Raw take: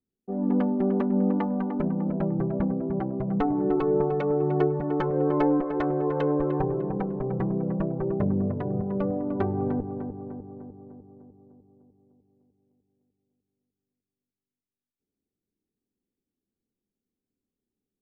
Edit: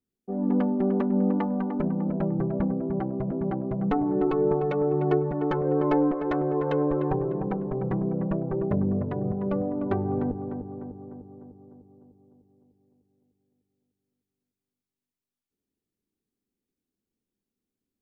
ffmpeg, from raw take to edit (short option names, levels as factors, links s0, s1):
-filter_complex "[0:a]asplit=2[s0][s1];[s0]atrim=end=3.312[s2];[s1]atrim=start=2.798[s3];[s2][s3]acrossfade=d=0.004:c1=hsin:c2=hsin"